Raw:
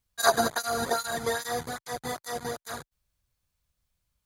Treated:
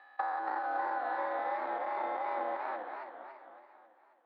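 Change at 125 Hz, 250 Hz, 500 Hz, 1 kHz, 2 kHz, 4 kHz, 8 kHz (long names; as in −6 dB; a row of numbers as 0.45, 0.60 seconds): below −35 dB, −11.0 dB, −8.0 dB, −1.5 dB, −7.5 dB, below −25 dB, below −40 dB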